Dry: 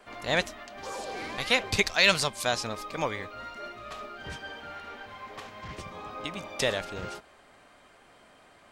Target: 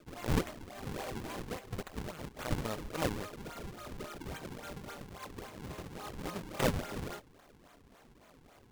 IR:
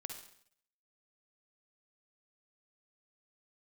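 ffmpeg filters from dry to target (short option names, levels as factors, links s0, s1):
-filter_complex "[0:a]asettb=1/sr,asplit=3[s0][s1][s2];[s0]atrim=end=1.064[s3];[s1]atrim=start=1.06:end=2.51,asetpts=PTS-STARTPTS,afade=t=in:d=0.004:c=qsin,afade=t=out:st=1.446:d=0.004:c=qsin,acompressor=threshold=0.0224:ratio=16[s4];[s2]atrim=start=2.506[s5];[s3][s4]acrossfade=d=0.004:c1=hsin:c2=qsin[s6];[s6][s5]acrossfade=d=0.004:c1=qsin:c2=hsin,acrusher=samples=41:mix=1:aa=0.000001:lfo=1:lforange=65.6:lforate=3.6,volume=0.708"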